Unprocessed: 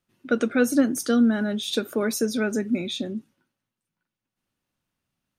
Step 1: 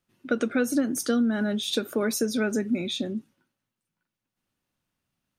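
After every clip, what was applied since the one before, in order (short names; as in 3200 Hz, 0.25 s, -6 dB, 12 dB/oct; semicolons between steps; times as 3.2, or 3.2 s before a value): compressor, threshold -20 dBFS, peak gain reduction 6.5 dB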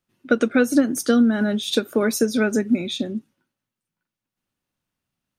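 upward expander 1.5:1, over -38 dBFS; gain +8 dB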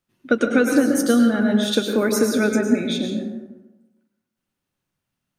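plate-style reverb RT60 1.1 s, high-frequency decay 0.45×, pre-delay 90 ms, DRR 2.5 dB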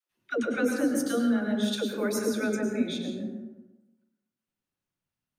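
dispersion lows, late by 0.11 s, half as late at 410 Hz; gain -9 dB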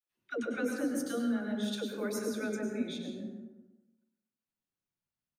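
feedback echo 97 ms, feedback 36%, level -15 dB; gain -7 dB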